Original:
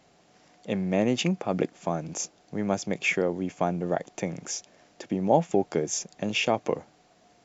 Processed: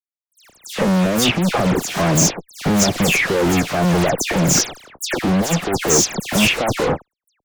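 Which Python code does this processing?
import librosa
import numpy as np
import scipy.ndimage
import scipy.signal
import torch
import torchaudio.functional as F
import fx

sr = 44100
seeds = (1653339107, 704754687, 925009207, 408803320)

y = fx.over_compress(x, sr, threshold_db=-29.0, ratio=-0.5)
y = fx.fuzz(y, sr, gain_db=46.0, gate_db=-46.0)
y = fx.dispersion(y, sr, late='lows', ms=133.0, hz=3000.0)
y = y * librosa.db_to_amplitude(-1.0)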